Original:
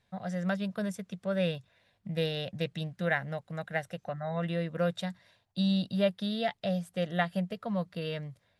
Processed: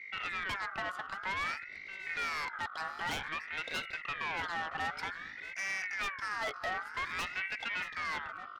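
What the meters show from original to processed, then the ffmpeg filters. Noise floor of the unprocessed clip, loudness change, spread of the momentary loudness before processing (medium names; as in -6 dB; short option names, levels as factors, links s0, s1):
-74 dBFS, -3.5 dB, 9 LU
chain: -filter_complex "[0:a]highpass=62,acrossover=split=270 3000:gain=0.178 1 0.0891[s0][s1][s2];[s0][s1][s2]amix=inputs=3:normalize=0,bandreject=f=190.5:t=h:w=4,bandreject=f=381:t=h:w=4,bandreject=f=571.5:t=h:w=4,bandreject=f=762:t=h:w=4,asplit=2[s3][s4];[s4]acompressor=threshold=0.00631:ratio=6,volume=1.12[s5];[s3][s5]amix=inputs=2:normalize=0,aeval=exprs='val(0)+0.00398*(sin(2*PI*50*n/s)+sin(2*PI*2*50*n/s)/2+sin(2*PI*3*50*n/s)/3+sin(2*PI*4*50*n/s)/4+sin(2*PI*5*50*n/s)/5)':c=same,aeval=exprs='0.178*sin(PI/2*2.82*val(0)/0.178)':c=same,aeval=exprs='(tanh(17.8*val(0)+0.4)-tanh(0.4))/17.8':c=same,aecho=1:1:630:0.224,aeval=exprs='val(0)*sin(2*PI*1700*n/s+1700*0.25/0.53*sin(2*PI*0.53*n/s))':c=same,volume=0.501"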